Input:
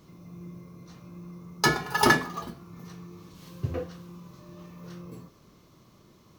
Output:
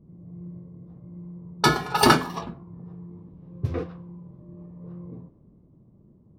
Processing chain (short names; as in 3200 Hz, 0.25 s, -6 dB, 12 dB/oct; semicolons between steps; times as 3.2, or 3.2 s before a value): low-pass opened by the level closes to 350 Hz, open at -24.5 dBFS; formant shift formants -2 st; gain +3.5 dB